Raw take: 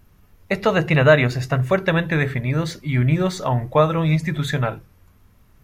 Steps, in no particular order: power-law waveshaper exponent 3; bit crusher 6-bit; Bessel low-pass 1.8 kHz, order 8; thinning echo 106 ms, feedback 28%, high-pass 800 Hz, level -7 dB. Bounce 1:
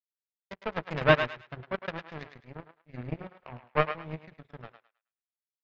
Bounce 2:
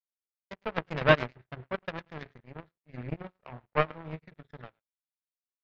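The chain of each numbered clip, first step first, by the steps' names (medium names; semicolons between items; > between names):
bit crusher > Bessel low-pass > power-law waveshaper > thinning echo; thinning echo > bit crusher > Bessel low-pass > power-law waveshaper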